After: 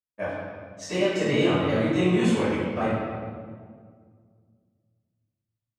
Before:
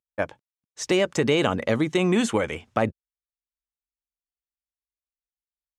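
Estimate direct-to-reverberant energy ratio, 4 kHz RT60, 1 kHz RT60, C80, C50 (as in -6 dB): -17.5 dB, 1.2 s, 1.7 s, 0.0 dB, -2.5 dB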